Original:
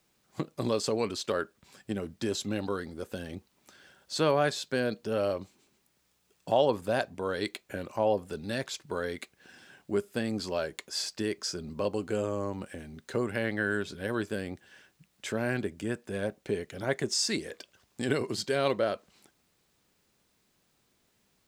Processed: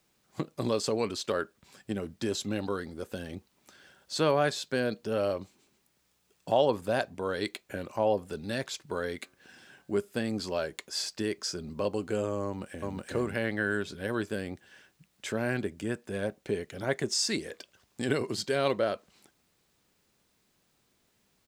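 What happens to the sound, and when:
9.18–10.00 s: de-hum 90.98 Hz, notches 19
12.45–12.97 s: echo throw 370 ms, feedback 10%, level 0 dB

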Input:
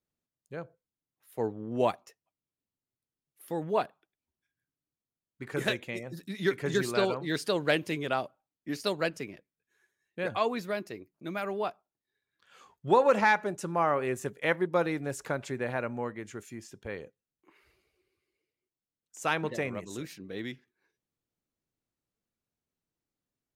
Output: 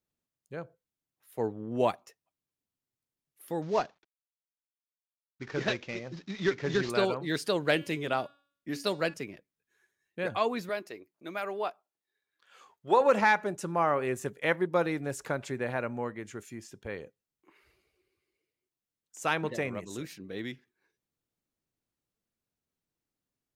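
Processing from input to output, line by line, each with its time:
3.62–6.90 s: CVSD coder 32 kbps
7.63–9.14 s: de-hum 283 Hz, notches 32
10.69–13.01 s: tone controls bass -13 dB, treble -1 dB

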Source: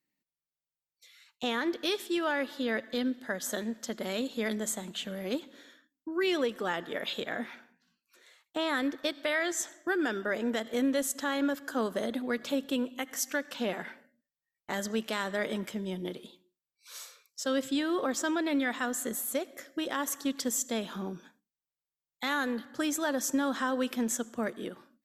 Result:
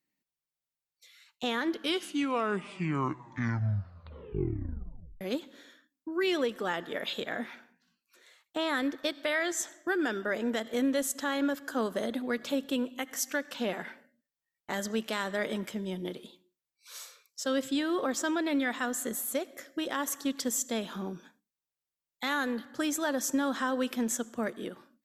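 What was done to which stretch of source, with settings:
1.58 s: tape stop 3.63 s

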